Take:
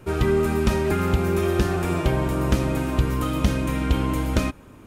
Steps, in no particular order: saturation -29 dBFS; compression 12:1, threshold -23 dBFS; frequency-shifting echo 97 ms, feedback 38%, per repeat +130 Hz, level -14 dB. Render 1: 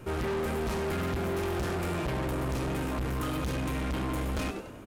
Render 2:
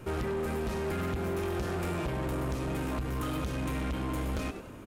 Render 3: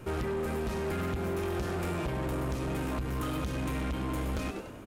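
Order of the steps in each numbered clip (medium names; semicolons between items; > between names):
frequency-shifting echo > saturation > compression; compression > frequency-shifting echo > saturation; frequency-shifting echo > compression > saturation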